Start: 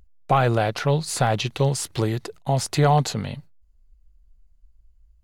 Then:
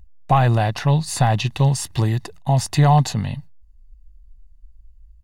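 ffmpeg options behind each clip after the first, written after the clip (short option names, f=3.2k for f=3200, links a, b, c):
-af "lowshelf=f=160:g=5.5,aecho=1:1:1.1:0.52"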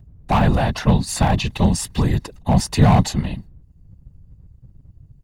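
-filter_complex "[0:a]afftfilt=real='hypot(re,im)*cos(2*PI*random(0))':imag='hypot(re,im)*sin(2*PI*random(1))':win_size=512:overlap=0.75,acrossover=split=230|3300[a][b][c];[b]asoftclip=type=hard:threshold=-22dB[d];[a][d][c]amix=inputs=3:normalize=0,volume=7dB"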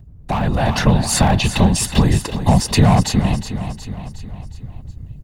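-filter_complex "[0:a]acompressor=threshold=-26dB:ratio=2.5,asplit=2[a][b];[b]aecho=0:1:364|728|1092|1456|1820:0.282|0.144|0.0733|0.0374|0.0191[c];[a][c]amix=inputs=2:normalize=0,dynaudnorm=f=380:g=3:m=8.5dB,volume=3.5dB"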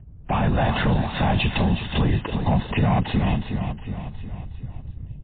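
-af "alimiter=limit=-10.5dB:level=0:latency=1:release=26,volume=-1.5dB" -ar 8000 -c:a libmp3lame -b:a 16k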